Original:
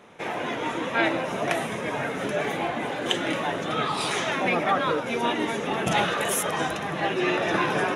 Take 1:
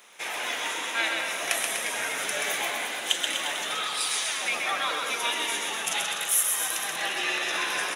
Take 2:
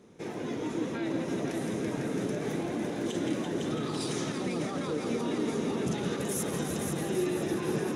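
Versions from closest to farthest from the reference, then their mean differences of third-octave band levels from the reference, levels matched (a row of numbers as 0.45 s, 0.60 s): 2, 1; 5.5 dB, 11.5 dB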